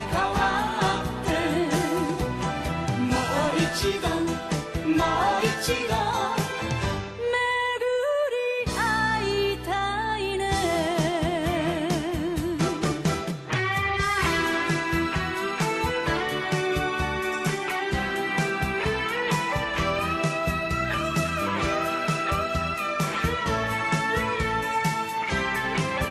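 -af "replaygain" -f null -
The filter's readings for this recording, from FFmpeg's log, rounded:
track_gain = +7.9 dB
track_peak = 0.173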